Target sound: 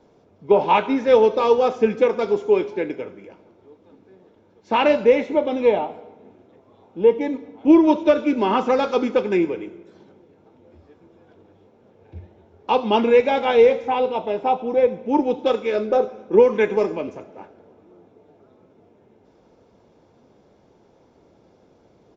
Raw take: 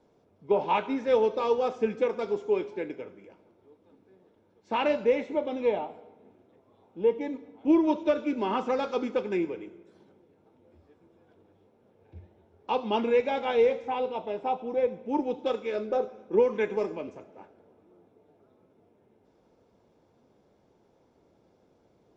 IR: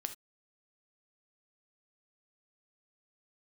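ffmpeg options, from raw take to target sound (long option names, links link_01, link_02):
-af "aresample=16000,aresample=44100,volume=9dB"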